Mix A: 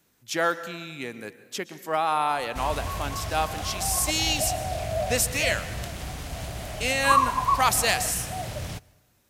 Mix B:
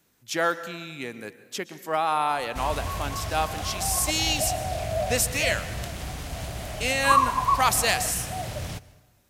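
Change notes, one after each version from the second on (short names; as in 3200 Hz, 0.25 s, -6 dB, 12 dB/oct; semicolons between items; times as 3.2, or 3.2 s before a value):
background: send +6.5 dB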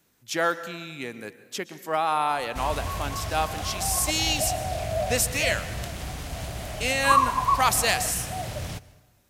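none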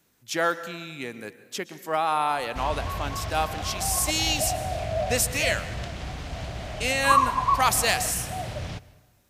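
background: add LPF 5000 Hz 12 dB/oct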